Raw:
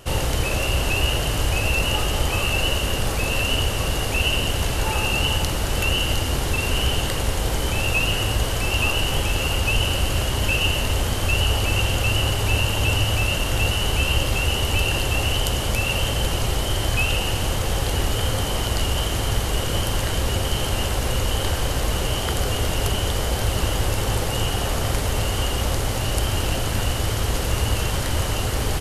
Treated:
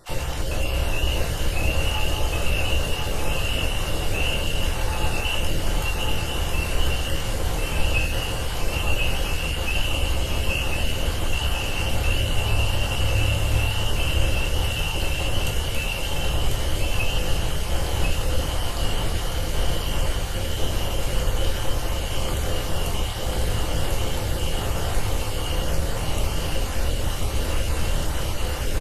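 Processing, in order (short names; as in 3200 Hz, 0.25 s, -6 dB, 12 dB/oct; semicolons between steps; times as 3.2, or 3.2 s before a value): random spectral dropouts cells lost 25%; echo 1.045 s -4 dB; shoebox room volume 110 m³, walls mixed, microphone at 0.81 m; gain -7 dB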